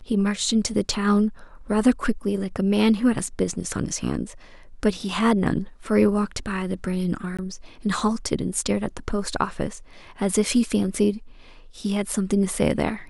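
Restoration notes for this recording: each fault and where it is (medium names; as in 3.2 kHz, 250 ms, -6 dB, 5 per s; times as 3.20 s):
7.37–7.39 s: dropout 16 ms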